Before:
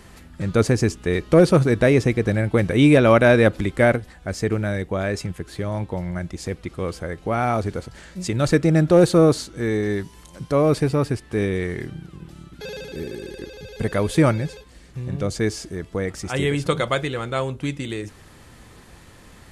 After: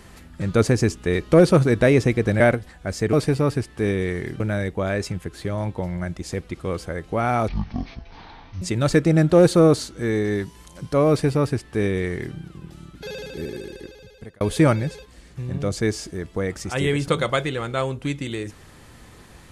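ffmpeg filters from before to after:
-filter_complex "[0:a]asplit=7[a][b][c][d][e][f][g];[a]atrim=end=2.402[h];[b]atrim=start=3.808:end=4.542[i];[c]atrim=start=10.668:end=11.942[j];[d]atrim=start=4.538:end=7.624[k];[e]atrim=start=7.62:end=8.2,asetpts=PTS-STARTPTS,asetrate=22491,aresample=44100[l];[f]atrim=start=8.196:end=13.99,asetpts=PTS-STARTPTS,afade=t=out:st=4.934:d=0.86[m];[g]atrim=start=13.99,asetpts=PTS-STARTPTS,afade=t=in:d=0.004:c=hsin[n];[h][i]acrossfade=d=0.004:c1=hsin:c2=hsin[o];[o][j]acrossfade=d=0.004:c1=hsin:c2=hsin[p];[p][k]acrossfade=d=0.004:c1=hsin:c2=hsin[q];[q][l]acrossfade=d=0.004:c1=hsin:c2=hsin[r];[m][n]concat=n=2:v=0:a=1[s];[r][s]acrossfade=d=0.004:c1=hsin:c2=hsin"

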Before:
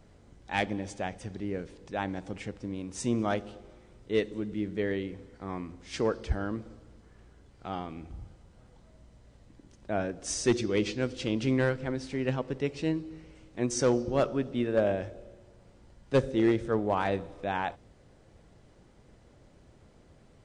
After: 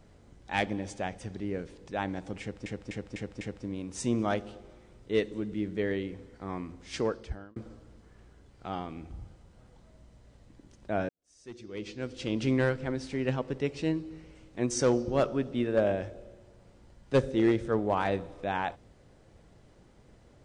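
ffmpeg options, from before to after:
-filter_complex "[0:a]asplit=7[a][b][c][d][e][f][g];[a]atrim=end=2.662[h];[b]atrim=start=2.408:end=2.662[i];[c]atrim=start=2.408:end=2.662[j];[d]atrim=start=2.408:end=2.662[k];[e]atrim=start=2.408:end=6.56,asetpts=PTS-STARTPTS,afade=t=out:st=3.542:d=0.61[l];[f]atrim=start=6.56:end=10.09,asetpts=PTS-STARTPTS,afade=t=in:d=0.004:c=hsin,afade=t=out:st=3.526:d=0.004:c=hsin[m];[g]atrim=start=10.09,asetpts=PTS-STARTPTS,afade=t=in:d=1.33:c=qua[n];[h][i]acrossfade=d=0.004:c1=hsin:c2=hsin[o];[o][j]acrossfade=d=0.004:c1=hsin:c2=hsin[p];[p][k]acrossfade=d=0.004:c1=hsin:c2=hsin[q];[l][m][n]concat=n=3:v=0:a=1[r];[q][r]acrossfade=d=0.004:c1=hsin:c2=hsin"

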